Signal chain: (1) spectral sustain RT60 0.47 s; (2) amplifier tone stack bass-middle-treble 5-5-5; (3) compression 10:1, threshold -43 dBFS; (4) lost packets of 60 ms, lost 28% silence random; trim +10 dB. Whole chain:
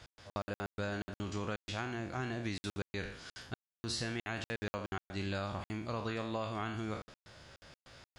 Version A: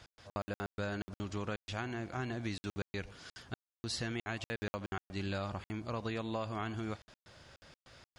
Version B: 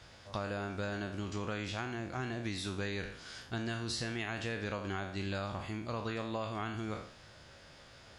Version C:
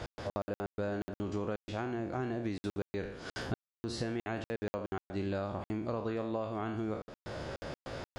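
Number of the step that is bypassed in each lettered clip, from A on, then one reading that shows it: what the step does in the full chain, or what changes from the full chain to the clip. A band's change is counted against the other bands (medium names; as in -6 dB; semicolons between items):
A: 1, momentary loudness spread change +2 LU; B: 4, momentary loudness spread change -1 LU; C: 2, 500 Hz band +6.0 dB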